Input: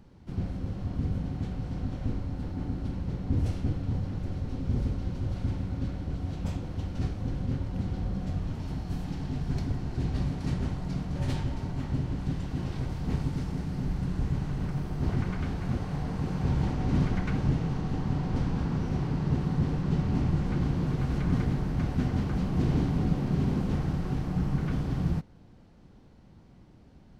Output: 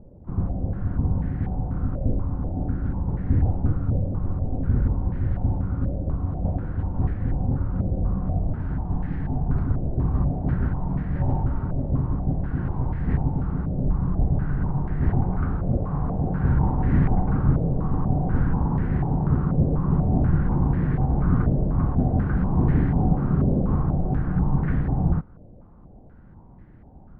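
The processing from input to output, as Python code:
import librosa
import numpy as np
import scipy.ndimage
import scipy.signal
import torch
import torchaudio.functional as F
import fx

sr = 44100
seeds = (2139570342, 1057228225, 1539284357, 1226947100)

y = fx.tilt_eq(x, sr, slope=-2.0)
y = fx.filter_held_lowpass(y, sr, hz=4.1, low_hz=590.0, high_hz=1800.0)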